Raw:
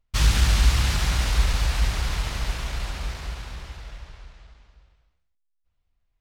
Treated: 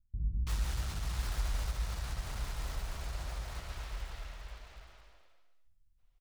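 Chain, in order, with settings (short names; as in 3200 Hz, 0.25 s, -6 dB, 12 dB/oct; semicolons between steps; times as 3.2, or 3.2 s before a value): switching dead time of 0.091 ms; dynamic EQ 2600 Hz, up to -5 dB, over -44 dBFS, Q 1; compressor 2:1, threshold -42 dBFS, peak gain reduction 15.5 dB; soft clip -27.5 dBFS, distortion -19 dB; bands offset in time lows, highs 0.33 s, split 260 Hz; reverb RT60 0.30 s, pre-delay 75 ms, DRR 6.5 dB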